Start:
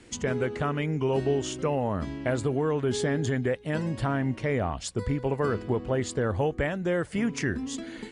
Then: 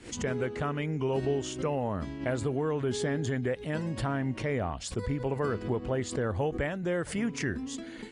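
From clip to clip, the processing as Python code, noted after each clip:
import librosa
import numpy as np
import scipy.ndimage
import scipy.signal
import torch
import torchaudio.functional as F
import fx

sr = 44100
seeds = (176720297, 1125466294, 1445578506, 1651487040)

y = fx.pre_swell(x, sr, db_per_s=140.0)
y = y * librosa.db_to_amplitude(-3.5)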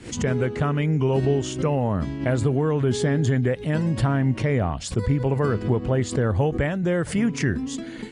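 y = fx.peak_eq(x, sr, hz=130.0, db=6.5, octaves=1.7)
y = y * librosa.db_to_amplitude(5.5)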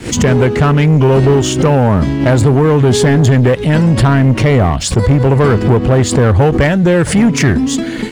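y = fx.leveller(x, sr, passes=2)
y = y * librosa.db_to_amplitude(8.0)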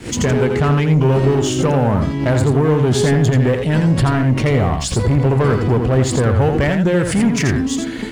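y = x + 10.0 ** (-6.0 / 20.0) * np.pad(x, (int(84 * sr / 1000.0), 0))[:len(x)]
y = y * librosa.db_to_amplitude(-6.0)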